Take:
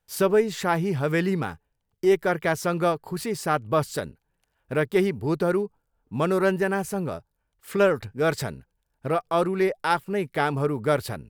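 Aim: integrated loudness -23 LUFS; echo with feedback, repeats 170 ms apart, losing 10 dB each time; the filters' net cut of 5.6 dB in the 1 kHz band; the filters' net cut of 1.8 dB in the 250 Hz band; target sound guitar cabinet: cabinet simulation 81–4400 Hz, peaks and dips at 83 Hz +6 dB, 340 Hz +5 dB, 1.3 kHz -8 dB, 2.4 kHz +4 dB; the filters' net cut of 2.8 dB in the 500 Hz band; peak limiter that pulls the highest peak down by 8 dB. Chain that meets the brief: peaking EQ 250 Hz -5 dB; peaking EQ 500 Hz -3 dB; peaking EQ 1 kHz -3.5 dB; peak limiter -17.5 dBFS; cabinet simulation 81–4400 Hz, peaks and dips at 83 Hz +6 dB, 340 Hz +5 dB, 1.3 kHz -8 dB, 2.4 kHz +4 dB; feedback delay 170 ms, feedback 32%, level -10 dB; trim +5.5 dB

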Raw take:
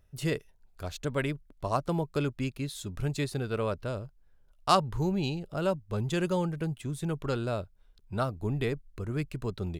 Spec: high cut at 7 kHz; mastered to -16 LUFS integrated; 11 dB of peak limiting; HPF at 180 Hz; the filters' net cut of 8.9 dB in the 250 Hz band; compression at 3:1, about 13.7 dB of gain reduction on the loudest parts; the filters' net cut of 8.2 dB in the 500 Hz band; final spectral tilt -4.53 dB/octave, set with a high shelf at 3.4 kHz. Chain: high-pass 180 Hz; low-pass 7 kHz; peaking EQ 250 Hz -8.5 dB; peaking EQ 500 Hz -8 dB; treble shelf 3.4 kHz +4.5 dB; compression 3:1, threshold -38 dBFS; trim +27.5 dB; peak limiter -3.5 dBFS

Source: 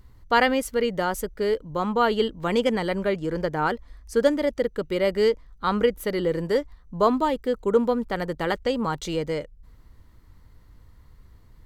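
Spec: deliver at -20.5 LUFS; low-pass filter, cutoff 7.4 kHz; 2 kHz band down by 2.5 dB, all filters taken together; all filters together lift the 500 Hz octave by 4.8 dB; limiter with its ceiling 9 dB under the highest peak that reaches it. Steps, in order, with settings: low-pass 7.4 kHz; peaking EQ 500 Hz +5.5 dB; peaking EQ 2 kHz -3.5 dB; trim +3 dB; peak limiter -9.5 dBFS

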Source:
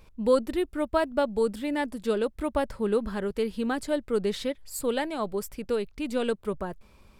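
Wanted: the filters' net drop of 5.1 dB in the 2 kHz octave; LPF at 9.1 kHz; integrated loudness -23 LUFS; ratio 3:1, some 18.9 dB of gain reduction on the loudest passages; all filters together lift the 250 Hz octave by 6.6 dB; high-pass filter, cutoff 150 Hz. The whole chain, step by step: high-pass 150 Hz; low-pass 9.1 kHz; peaking EQ 250 Hz +8.5 dB; peaking EQ 2 kHz -7 dB; compression 3:1, threshold -41 dBFS; trim +17 dB

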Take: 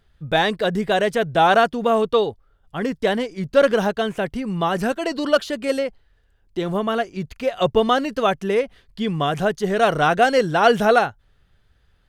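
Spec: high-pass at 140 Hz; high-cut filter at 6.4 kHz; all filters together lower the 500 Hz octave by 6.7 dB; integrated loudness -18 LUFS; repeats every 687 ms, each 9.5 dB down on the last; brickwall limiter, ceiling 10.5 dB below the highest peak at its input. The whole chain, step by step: high-pass 140 Hz; low-pass 6.4 kHz; peaking EQ 500 Hz -8.5 dB; peak limiter -15 dBFS; feedback delay 687 ms, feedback 33%, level -9.5 dB; trim +8.5 dB

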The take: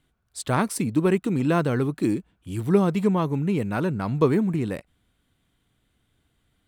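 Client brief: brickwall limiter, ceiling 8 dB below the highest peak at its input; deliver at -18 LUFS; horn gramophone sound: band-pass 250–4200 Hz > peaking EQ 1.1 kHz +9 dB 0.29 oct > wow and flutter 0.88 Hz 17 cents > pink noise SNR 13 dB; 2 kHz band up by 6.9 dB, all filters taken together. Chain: peaking EQ 2 kHz +9 dB; peak limiter -13.5 dBFS; band-pass 250–4200 Hz; peaking EQ 1.1 kHz +9 dB 0.29 oct; wow and flutter 0.88 Hz 17 cents; pink noise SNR 13 dB; trim +8.5 dB

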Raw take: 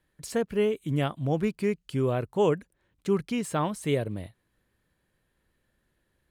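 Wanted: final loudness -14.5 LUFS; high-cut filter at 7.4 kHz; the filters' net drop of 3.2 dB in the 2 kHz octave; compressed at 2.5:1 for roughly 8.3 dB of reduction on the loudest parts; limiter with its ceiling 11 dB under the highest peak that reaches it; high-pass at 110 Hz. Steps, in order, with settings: high-pass 110 Hz; low-pass 7.4 kHz; peaking EQ 2 kHz -4 dB; compression 2.5:1, threshold -32 dBFS; trim +26.5 dB; peak limiter -4 dBFS

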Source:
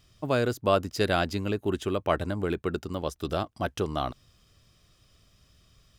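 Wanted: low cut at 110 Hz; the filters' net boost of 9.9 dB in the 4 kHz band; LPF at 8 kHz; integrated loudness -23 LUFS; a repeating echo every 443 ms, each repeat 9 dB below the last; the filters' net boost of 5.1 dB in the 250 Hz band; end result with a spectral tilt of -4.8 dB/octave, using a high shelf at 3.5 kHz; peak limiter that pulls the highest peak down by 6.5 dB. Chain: high-pass 110 Hz; low-pass 8 kHz; peaking EQ 250 Hz +7 dB; treble shelf 3.5 kHz +7.5 dB; peaking EQ 4 kHz +7.5 dB; peak limiter -11 dBFS; feedback delay 443 ms, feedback 35%, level -9 dB; trim +4 dB

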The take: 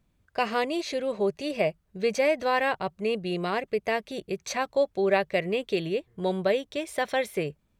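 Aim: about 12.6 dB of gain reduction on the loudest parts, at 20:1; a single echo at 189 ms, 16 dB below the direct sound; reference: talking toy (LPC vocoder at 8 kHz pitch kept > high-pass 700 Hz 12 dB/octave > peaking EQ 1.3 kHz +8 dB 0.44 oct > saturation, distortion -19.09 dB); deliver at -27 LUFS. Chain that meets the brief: compression 20:1, threshold -31 dBFS; delay 189 ms -16 dB; LPC vocoder at 8 kHz pitch kept; high-pass 700 Hz 12 dB/octave; peaking EQ 1.3 kHz +8 dB 0.44 oct; saturation -27.5 dBFS; trim +15.5 dB

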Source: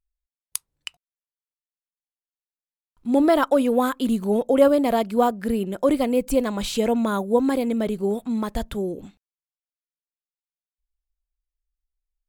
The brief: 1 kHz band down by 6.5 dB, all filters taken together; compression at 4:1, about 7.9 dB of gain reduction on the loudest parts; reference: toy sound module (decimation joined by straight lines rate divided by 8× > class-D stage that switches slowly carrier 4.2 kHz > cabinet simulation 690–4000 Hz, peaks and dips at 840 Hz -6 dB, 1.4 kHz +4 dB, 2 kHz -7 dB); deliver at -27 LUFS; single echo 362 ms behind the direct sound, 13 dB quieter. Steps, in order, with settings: peaking EQ 1 kHz -4.5 dB; compression 4:1, threshold -21 dBFS; delay 362 ms -13 dB; decimation joined by straight lines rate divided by 8×; class-D stage that switches slowly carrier 4.2 kHz; cabinet simulation 690–4000 Hz, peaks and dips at 840 Hz -6 dB, 1.4 kHz +4 dB, 2 kHz -7 dB; trim +5.5 dB

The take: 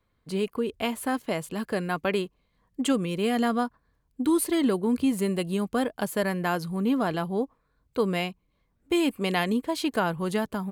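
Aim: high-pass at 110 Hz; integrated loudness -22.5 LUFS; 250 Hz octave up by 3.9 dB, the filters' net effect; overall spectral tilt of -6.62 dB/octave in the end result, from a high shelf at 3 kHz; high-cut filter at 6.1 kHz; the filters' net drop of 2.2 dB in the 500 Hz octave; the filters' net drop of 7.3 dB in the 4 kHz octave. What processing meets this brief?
high-pass 110 Hz; low-pass 6.1 kHz; peaking EQ 250 Hz +6.5 dB; peaking EQ 500 Hz -5.5 dB; treble shelf 3 kHz -6 dB; peaking EQ 4 kHz -5.5 dB; trim +3 dB

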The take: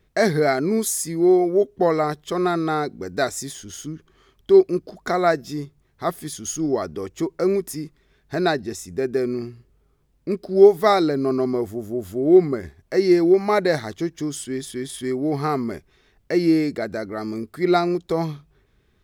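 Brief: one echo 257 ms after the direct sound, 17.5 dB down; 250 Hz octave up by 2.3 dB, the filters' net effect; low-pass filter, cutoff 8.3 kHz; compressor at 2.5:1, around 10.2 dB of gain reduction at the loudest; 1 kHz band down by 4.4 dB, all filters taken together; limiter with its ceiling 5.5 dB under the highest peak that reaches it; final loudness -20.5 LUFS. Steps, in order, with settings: low-pass 8.3 kHz; peaking EQ 250 Hz +4.5 dB; peaking EQ 1 kHz -7.5 dB; compression 2.5:1, threshold -22 dBFS; peak limiter -17.5 dBFS; delay 257 ms -17.5 dB; trim +7 dB

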